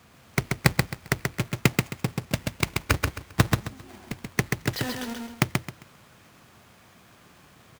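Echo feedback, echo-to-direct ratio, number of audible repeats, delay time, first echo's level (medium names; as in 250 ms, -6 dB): 25%, -3.0 dB, 3, 133 ms, -3.5 dB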